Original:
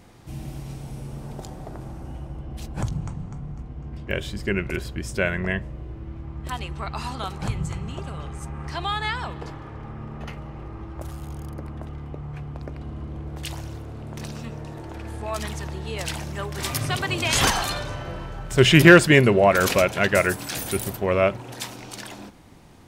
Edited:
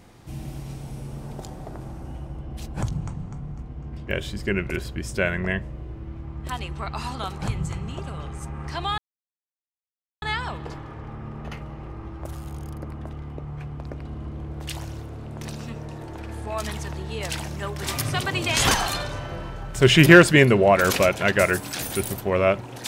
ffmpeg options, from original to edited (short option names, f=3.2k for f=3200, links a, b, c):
-filter_complex "[0:a]asplit=2[a][b];[a]atrim=end=8.98,asetpts=PTS-STARTPTS,afade=t=out:st=8.976:d=0.004:c=hsin,apad=pad_dur=1.24[c];[b]atrim=start=8.98,asetpts=PTS-STARTPTS,afade=t=in:d=0.004:c=hsin[d];[c][d]concat=n=2:v=0:a=1"